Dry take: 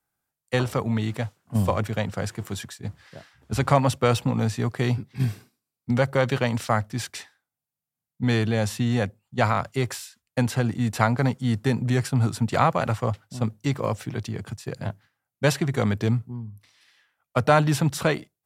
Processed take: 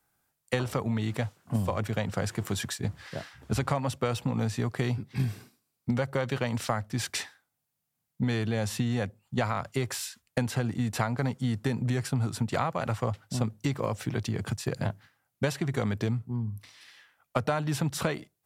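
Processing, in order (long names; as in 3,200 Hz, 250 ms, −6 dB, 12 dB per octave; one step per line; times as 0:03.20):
downward compressor 5 to 1, threshold −33 dBFS, peak gain reduction 18.5 dB
level +6.5 dB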